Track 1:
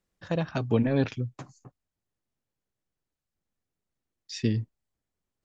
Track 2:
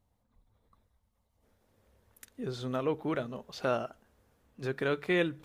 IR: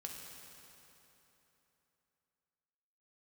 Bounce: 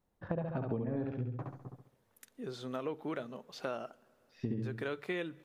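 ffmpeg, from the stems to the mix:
-filter_complex "[0:a]lowpass=1200,volume=1.19,asplit=2[s0][s1];[s1]volume=0.631[s2];[1:a]highpass=160,volume=0.596,asplit=3[s3][s4][s5];[s4]volume=0.0708[s6];[s5]apad=whole_len=240225[s7];[s0][s7]sidechaincompress=threshold=0.00631:ratio=8:attack=16:release=1070[s8];[2:a]atrim=start_sample=2205[s9];[s6][s9]afir=irnorm=-1:irlink=0[s10];[s2]aecho=0:1:68|136|204|272|340|408:1|0.42|0.176|0.0741|0.0311|0.0131[s11];[s8][s3][s10][s11]amix=inputs=4:normalize=0,acompressor=threshold=0.0251:ratio=12"

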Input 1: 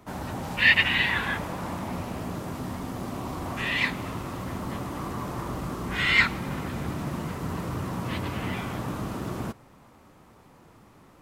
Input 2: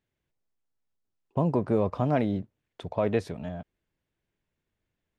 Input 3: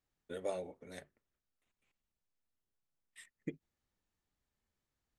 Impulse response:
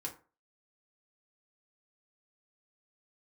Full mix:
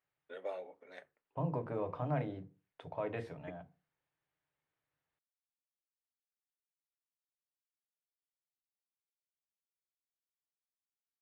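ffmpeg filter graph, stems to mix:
-filter_complex "[1:a]highpass=50,equalizer=f=140:t=o:w=0.28:g=14,volume=0.398,asplit=2[s0][s1];[s1]volume=0.422[s2];[2:a]volume=1.06,asplit=2[s3][s4];[s4]volume=0.106[s5];[s0][s3]amix=inputs=2:normalize=0,highpass=530,lowpass=2800,alimiter=level_in=2.11:limit=0.0631:level=0:latency=1:release=127,volume=0.473,volume=1[s6];[3:a]atrim=start_sample=2205[s7];[s2][s5]amix=inputs=2:normalize=0[s8];[s8][s7]afir=irnorm=-1:irlink=0[s9];[s6][s9]amix=inputs=2:normalize=0"

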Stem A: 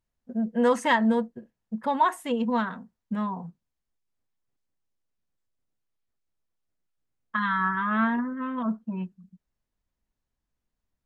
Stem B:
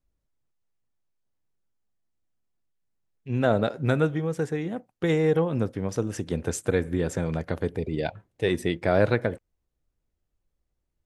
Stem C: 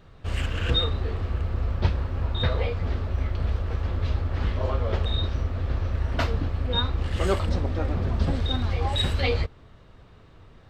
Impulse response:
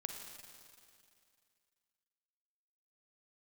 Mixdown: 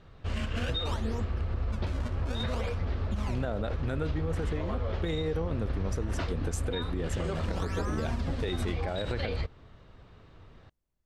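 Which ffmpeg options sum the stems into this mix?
-filter_complex "[0:a]acompressor=threshold=0.0562:ratio=6,acrusher=samples=29:mix=1:aa=0.000001:lfo=1:lforange=46.4:lforate=0.6,volume=0.473[s0];[1:a]volume=0.631[s1];[2:a]volume=0.75[s2];[s0][s2]amix=inputs=2:normalize=0,lowpass=7500,alimiter=limit=0.112:level=0:latency=1:release=222,volume=1[s3];[s1][s3]amix=inputs=2:normalize=0,alimiter=limit=0.075:level=0:latency=1:release=61"

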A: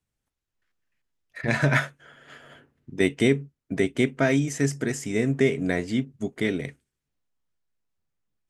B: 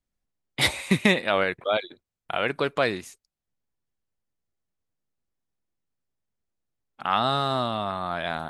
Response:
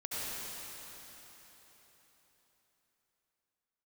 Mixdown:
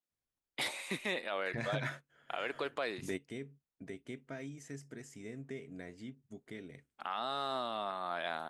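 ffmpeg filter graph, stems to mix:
-filter_complex "[0:a]acompressor=threshold=0.00891:ratio=1.5,adelay=100,volume=0.668[s0];[1:a]highpass=300,alimiter=limit=0.178:level=0:latency=1:release=26,volume=0.422,asplit=2[s1][s2];[s2]apad=whole_len=379193[s3];[s0][s3]sidechaingate=range=0.282:threshold=0.00141:ratio=16:detection=peak[s4];[s4][s1]amix=inputs=2:normalize=0,alimiter=level_in=1.12:limit=0.0631:level=0:latency=1:release=242,volume=0.891"

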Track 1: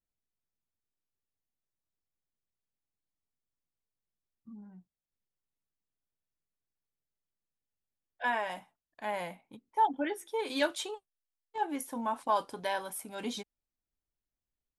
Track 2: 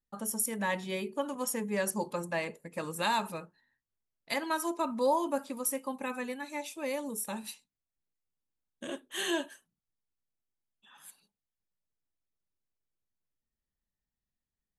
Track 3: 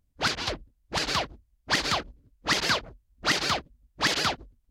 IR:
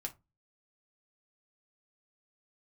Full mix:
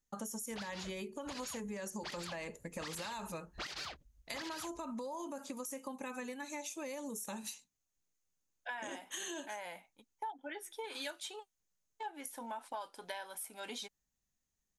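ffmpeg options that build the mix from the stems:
-filter_complex "[0:a]highpass=f=870:p=1,agate=range=0.0224:threshold=0.002:ratio=3:detection=peak,bandreject=f=1100:w=8.8,adelay=450,volume=1.12[s0];[1:a]equalizer=f=6500:t=o:w=0.31:g=13.5,alimiter=level_in=1.12:limit=0.0631:level=0:latency=1,volume=0.891,volume=1.33[s1];[2:a]equalizer=f=270:w=0.48:g=-9,alimiter=limit=0.0794:level=0:latency=1:release=491,adelay=350,volume=0.841[s2];[s1][s2]amix=inputs=2:normalize=0,alimiter=level_in=1.26:limit=0.0631:level=0:latency=1,volume=0.794,volume=1[s3];[s0][s3]amix=inputs=2:normalize=0,acompressor=threshold=0.01:ratio=6"

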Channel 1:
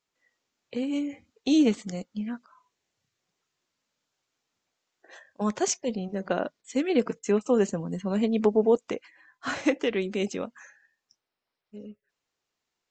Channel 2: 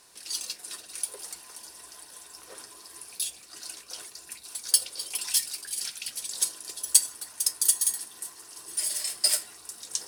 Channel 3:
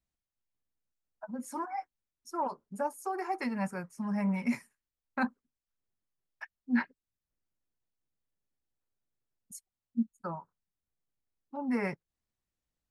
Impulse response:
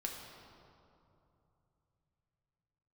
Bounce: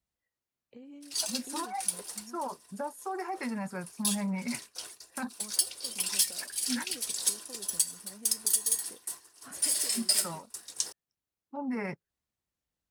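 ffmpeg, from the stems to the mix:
-filter_complex "[0:a]highshelf=f=2500:g=-9.5,acompressor=threshold=0.0282:ratio=6,volume=0.168[s0];[1:a]agate=range=0.0224:threshold=0.0141:ratio=3:detection=peak,adelay=850,volume=1.12[s1];[2:a]highpass=45,alimiter=level_in=1.5:limit=0.0631:level=0:latency=1:release=37,volume=0.668,volume=1.06[s2];[s0][s1][s2]amix=inputs=3:normalize=0,alimiter=limit=0.266:level=0:latency=1:release=500"

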